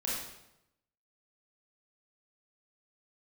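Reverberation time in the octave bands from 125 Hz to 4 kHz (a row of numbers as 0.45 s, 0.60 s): 1.0 s, 0.90 s, 0.90 s, 0.85 s, 0.75 s, 0.70 s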